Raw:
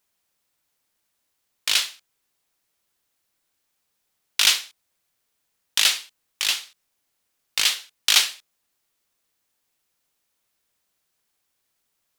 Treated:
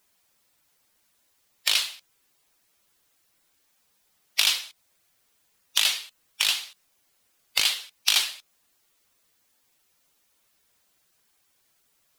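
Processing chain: bin magnitudes rounded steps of 15 dB; compressor 3:1, threshold -29 dBFS, peak gain reduction 12.5 dB; gain +7 dB

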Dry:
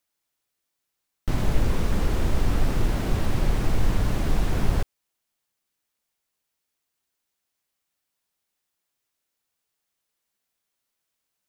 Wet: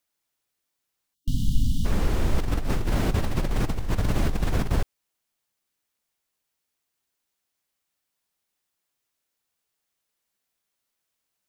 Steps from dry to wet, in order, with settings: 1.14–1.85 spectral delete 280–2800 Hz; 2.38–4.76 negative-ratio compressor -23 dBFS, ratio -1

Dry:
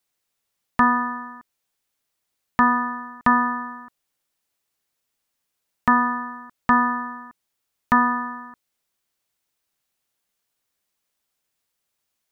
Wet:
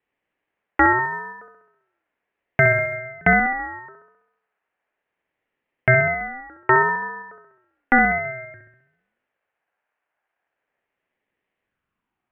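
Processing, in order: mistuned SSB -380 Hz 170–2600 Hz; dark delay 66 ms, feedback 58%, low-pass 1300 Hz, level -4.5 dB; in parallel at 0 dB: limiter -12 dBFS, peak gain reduction 7.5 dB; on the sum: high-pass sweep 1100 Hz -> 180 Hz, 11.62–12.24; 1.03–2.96 short-mantissa float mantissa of 6-bit; ring modulator with a swept carrier 570 Hz, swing 30%, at 0.35 Hz

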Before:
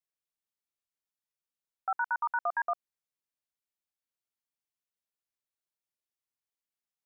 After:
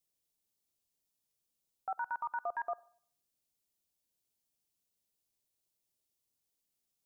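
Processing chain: bell 1500 Hz -14 dB 1.8 oct; limiter -39 dBFS, peak gain reduction 8 dB; on a send: reverb, pre-delay 49 ms, DRR 21 dB; on the sum: gain +10 dB

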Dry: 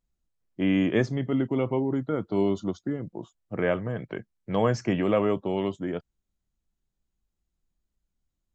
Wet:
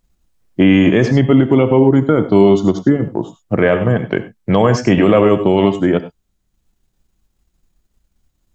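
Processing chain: non-linear reverb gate 0.12 s rising, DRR 9.5 dB; transient shaper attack +2 dB, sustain -4 dB; maximiser +17.5 dB; gain -1 dB

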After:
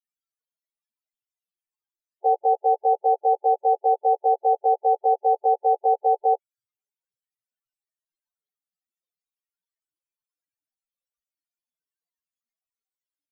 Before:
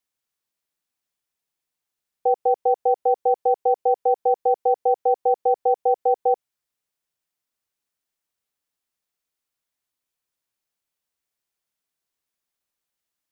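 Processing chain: short-time reversal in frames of 34 ms; loudest bins only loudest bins 16; gain +3 dB

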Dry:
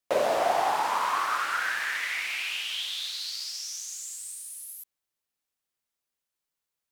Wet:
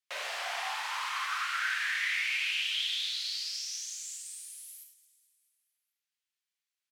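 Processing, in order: Chebyshev high-pass 2200 Hz, order 2; high shelf 8400 Hz -12 dB; on a send: frequency-shifting echo 0.218 s, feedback 57%, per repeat +32 Hz, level -18 dB; on the sum: non-linear reverb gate 0.12 s flat, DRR 1.5 dB

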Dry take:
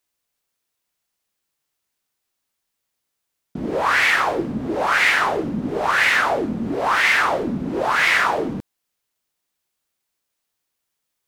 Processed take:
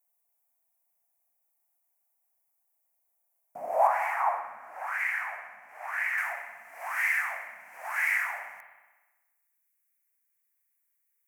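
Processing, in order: compressor 4:1, threshold -21 dBFS, peak gain reduction 8 dB; EQ curve 150 Hz 0 dB, 400 Hz -18 dB, 700 Hz +10 dB, 1400 Hz -5 dB, 2300 Hz -1 dB, 3600 Hz -24 dB, 5800 Hz -3 dB, 13000 Hz +13 dB; spring tank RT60 1.2 s, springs 59 ms, chirp 65 ms, DRR 6 dB; high-pass sweep 290 Hz -> 1800 Hz, 2.67–5.02; 3.87–6.18 high shelf 3200 Hz -10 dB; gain -8 dB

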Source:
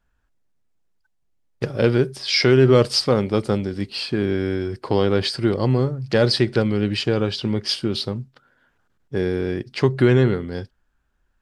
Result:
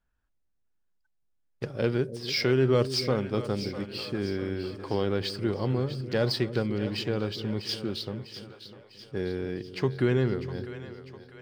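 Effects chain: median filter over 3 samples; split-band echo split 490 Hz, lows 0.291 s, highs 0.65 s, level -11.5 dB; gain -9 dB

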